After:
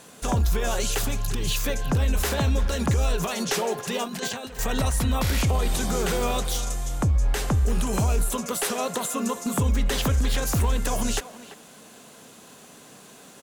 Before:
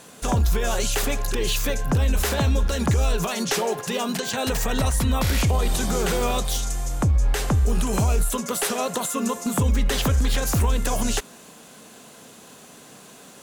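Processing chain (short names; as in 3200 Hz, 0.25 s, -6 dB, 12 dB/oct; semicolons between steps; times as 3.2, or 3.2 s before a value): 0.98–1.51 graphic EQ 125/500/2000 Hz +10/-11/-6 dB; 4.04–4.59 negative-ratio compressor -30 dBFS, ratio -0.5; speakerphone echo 0.34 s, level -13 dB; gain -2 dB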